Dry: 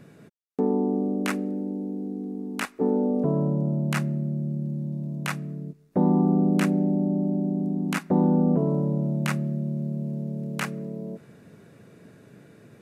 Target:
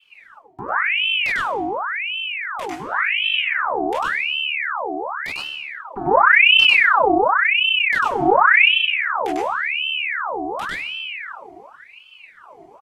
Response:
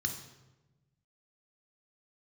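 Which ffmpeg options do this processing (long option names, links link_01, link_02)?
-filter_complex "[0:a]adynamicequalizer=threshold=0.00447:dfrequency=2800:dqfactor=0.96:tfrequency=2800:tqfactor=0.96:attack=5:release=100:ratio=0.375:range=3:mode=boostabove:tftype=bell,aecho=1:1:5.1:0.65,asplit=2[link_01][link_02];[1:a]atrim=start_sample=2205,lowshelf=frequency=420:gain=11.5,adelay=98[link_03];[link_02][link_03]afir=irnorm=-1:irlink=0,volume=-2.5dB[link_04];[link_01][link_04]amix=inputs=2:normalize=0,aeval=exprs='val(0)*sin(2*PI*1700*n/s+1700*0.7/0.91*sin(2*PI*0.91*n/s))':channel_layout=same,volume=-7.5dB"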